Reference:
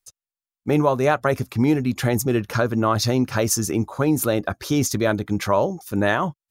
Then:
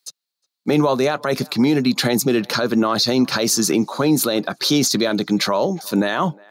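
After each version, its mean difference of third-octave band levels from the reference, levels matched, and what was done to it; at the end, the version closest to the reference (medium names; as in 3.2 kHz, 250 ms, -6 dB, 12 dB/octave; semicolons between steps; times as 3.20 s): 4.5 dB: steep high-pass 150 Hz 36 dB/octave; peaking EQ 4.2 kHz +15 dB 0.5 oct; peak limiter -15 dBFS, peak gain reduction 11.5 dB; on a send: band-passed feedback delay 360 ms, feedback 42%, band-pass 1 kHz, level -23 dB; on the sum: trim +6.5 dB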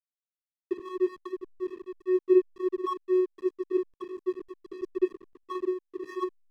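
18.5 dB: peaking EQ 5.8 kHz -9.5 dB 1.9 oct; gain riding 2 s; vocoder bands 32, square 368 Hz; hysteresis with a dead band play -26.5 dBFS; trim -7.5 dB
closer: first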